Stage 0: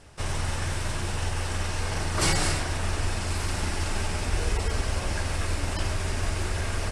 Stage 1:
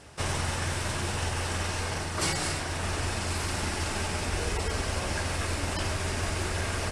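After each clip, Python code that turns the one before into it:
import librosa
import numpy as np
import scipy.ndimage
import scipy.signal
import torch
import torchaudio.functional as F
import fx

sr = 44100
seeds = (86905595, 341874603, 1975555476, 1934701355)

y = fx.highpass(x, sr, hz=94.0, slope=6)
y = fx.rider(y, sr, range_db=4, speed_s=0.5)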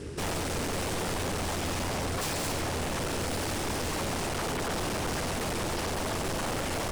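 y = fx.tube_stage(x, sr, drive_db=33.0, bias=0.5)
y = fx.low_shelf_res(y, sr, hz=540.0, db=8.5, q=3.0)
y = 10.0 ** (-32.0 / 20.0) * (np.abs((y / 10.0 ** (-32.0 / 20.0) + 3.0) % 4.0 - 2.0) - 1.0)
y = F.gain(torch.from_numpy(y), 5.5).numpy()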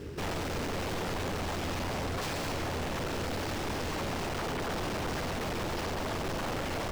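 y = scipy.signal.medfilt(x, 5)
y = F.gain(torch.from_numpy(y), -2.0).numpy()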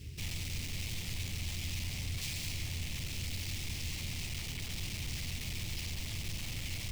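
y = fx.curve_eq(x, sr, hz=(110.0, 470.0, 1500.0, 2200.0, 12000.0), db=(0, -23, -22, -2, 3))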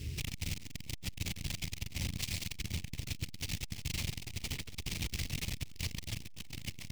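y = fx.transformer_sat(x, sr, knee_hz=260.0)
y = F.gain(torch.from_numpy(y), 6.0).numpy()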